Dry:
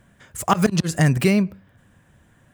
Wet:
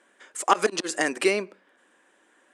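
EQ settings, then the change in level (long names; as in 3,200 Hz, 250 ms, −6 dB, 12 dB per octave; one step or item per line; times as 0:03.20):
elliptic band-pass filter 330–9,400 Hz, stop band 40 dB
notch filter 670 Hz, Q 12
0.0 dB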